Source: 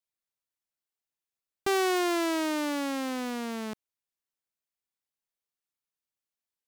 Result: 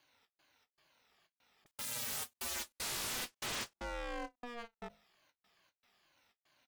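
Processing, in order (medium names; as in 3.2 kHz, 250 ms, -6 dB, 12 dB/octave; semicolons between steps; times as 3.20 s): drifting ripple filter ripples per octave 1.7, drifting -2.3 Hz, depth 14 dB; treble shelf 5.6 kHz +11 dB; in parallel at +2 dB: compression, threshold -59 dBFS, peak gain reduction 34.5 dB; on the sum: high-pass 310 Hz 24 dB/octave; distance through air 280 m; hum notches 50/100/150/200/250/300/350/400/450 Hz; on a send: delay 1150 ms -24 dB; on the sum: sine folder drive 12 dB, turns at -38 dBFS; trance gate "xxxx.xxxx.xxx" 193 bpm -60 dB; ring modulator 240 Hz; endings held to a fixed fall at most 500 dB/s; trim +5 dB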